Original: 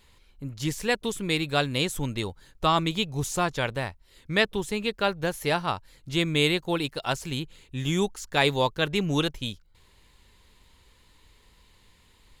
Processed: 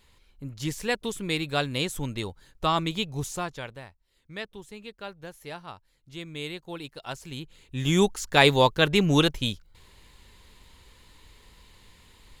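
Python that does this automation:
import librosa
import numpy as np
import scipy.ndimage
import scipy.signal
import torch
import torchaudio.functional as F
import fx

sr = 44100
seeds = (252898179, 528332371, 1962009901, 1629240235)

y = fx.gain(x, sr, db=fx.line((3.18, -2.0), (3.87, -14.0), (6.24, -14.0), (7.34, -7.0), (8.0, 4.5)))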